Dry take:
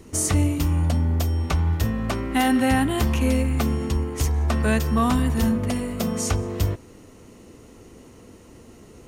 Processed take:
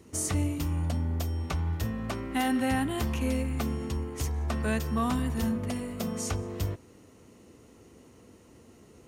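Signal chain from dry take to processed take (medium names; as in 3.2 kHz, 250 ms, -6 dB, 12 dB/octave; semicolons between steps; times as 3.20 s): high-pass 58 Hz; trim -7.5 dB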